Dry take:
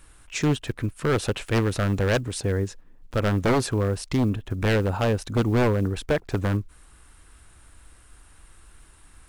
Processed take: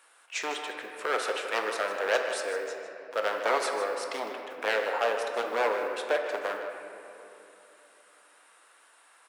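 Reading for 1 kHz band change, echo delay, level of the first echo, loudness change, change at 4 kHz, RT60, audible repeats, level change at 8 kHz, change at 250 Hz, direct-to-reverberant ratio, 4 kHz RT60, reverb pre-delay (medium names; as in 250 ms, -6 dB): +1.5 dB, 154 ms, -12.0 dB, -5.5 dB, -2.0 dB, 3.0 s, 1, -5.0 dB, -20.0 dB, 2.5 dB, 1.7 s, 4 ms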